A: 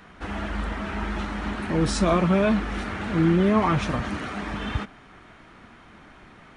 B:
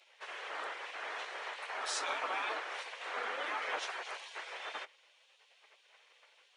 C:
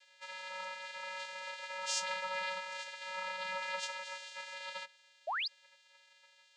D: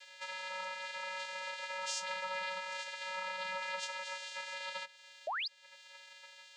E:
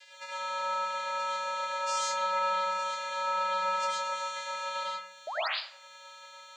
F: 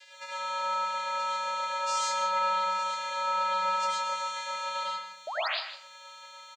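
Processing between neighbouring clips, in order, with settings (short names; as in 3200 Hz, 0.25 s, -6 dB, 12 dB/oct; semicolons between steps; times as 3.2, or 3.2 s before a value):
LPF 8800 Hz 12 dB/oct; spectral gate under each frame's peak -15 dB weak; HPF 440 Hz 24 dB/oct; gain -4.5 dB
differentiator; vocoder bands 8, square 186 Hz; painted sound rise, 5.27–5.48, 570–5300 Hz -46 dBFS; gain +10.5 dB
compressor 2:1, threshold -55 dBFS, peak gain reduction 13.5 dB; gain +9.5 dB
reverb RT60 0.55 s, pre-delay 65 ms, DRR -5 dB
echo 0.155 s -11.5 dB; gain +1 dB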